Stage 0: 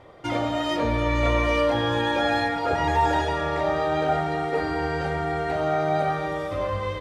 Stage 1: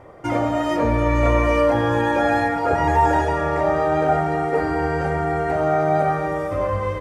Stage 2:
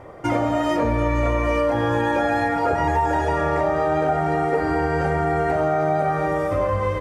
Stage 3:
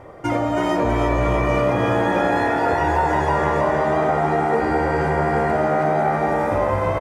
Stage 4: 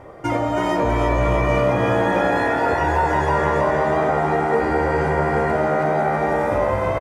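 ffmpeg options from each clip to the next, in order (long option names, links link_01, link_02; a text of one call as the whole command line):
ffmpeg -i in.wav -af "equalizer=frequency=3700:width=1.5:gain=-14,volume=5dB" out.wav
ffmpeg -i in.wav -af "acompressor=threshold=-20dB:ratio=6,volume=3dB" out.wav
ffmpeg -i in.wav -filter_complex "[0:a]asplit=8[link_01][link_02][link_03][link_04][link_05][link_06][link_07][link_08];[link_02]adelay=323,afreqshift=69,volume=-5dB[link_09];[link_03]adelay=646,afreqshift=138,volume=-10dB[link_10];[link_04]adelay=969,afreqshift=207,volume=-15.1dB[link_11];[link_05]adelay=1292,afreqshift=276,volume=-20.1dB[link_12];[link_06]adelay=1615,afreqshift=345,volume=-25.1dB[link_13];[link_07]adelay=1938,afreqshift=414,volume=-30.2dB[link_14];[link_08]adelay=2261,afreqshift=483,volume=-35.2dB[link_15];[link_01][link_09][link_10][link_11][link_12][link_13][link_14][link_15]amix=inputs=8:normalize=0" out.wav
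ffmpeg -i in.wav -filter_complex "[0:a]asplit=2[link_01][link_02];[link_02]adelay=15,volume=-12dB[link_03];[link_01][link_03]amix=inputs=2:normalize=0" out.wav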